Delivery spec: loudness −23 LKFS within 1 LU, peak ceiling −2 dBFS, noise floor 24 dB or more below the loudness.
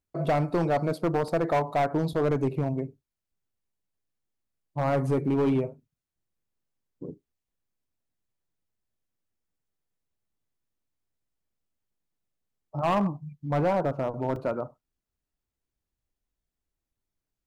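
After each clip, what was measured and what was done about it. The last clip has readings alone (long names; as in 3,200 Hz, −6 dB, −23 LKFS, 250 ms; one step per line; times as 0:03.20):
share of clipped samples 1.5%; peaks flattened at −19.5 dBFS; number of dropouts 2; longest dropout 2.1 ms; integrated loudness −27.5 LKFS; sample peak −19.5 dBFS; target loudness −23.0 LKFS
→ clipped peaks rebuilt −19.5 dBFS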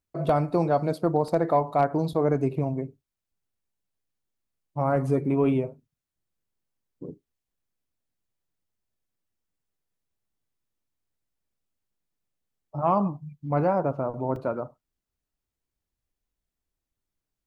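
share of clipped samples 0.0%; number of dropouts 2; longest dropout 2.1 ms
→ repair the gap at 0:01.28/0:14.36, 2.1 ms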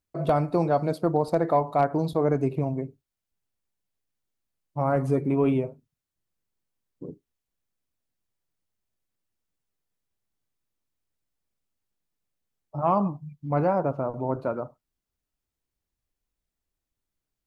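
number of dropouts 0; integrated loudness −26.0 LKFS; sample peak −10.5 dBFS; target loudness −23.0 LKFS
→ level +3 dB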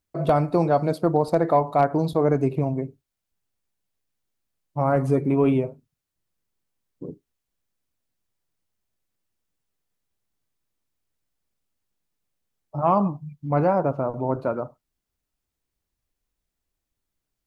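integrated loudness −23.0 LKFS; sample peak −7.5 dBFS; background noise floor −83 dBFS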